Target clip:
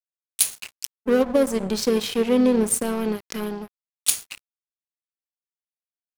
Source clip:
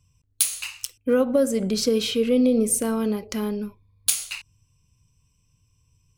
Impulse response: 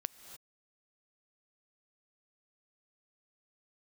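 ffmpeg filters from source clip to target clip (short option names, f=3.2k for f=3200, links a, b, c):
-filter_complex "[0:a]aeval=exprs='sgn(val(0))*max(abs(val(0))-0.0299,0)':c=same,asplit=2[a][b];[b]asetrate=37084,aresample=44100,atempo=1.18921,volume=-16dB[c];[a][c]amix=inputs=2:normalize=0,volume=2.5dB"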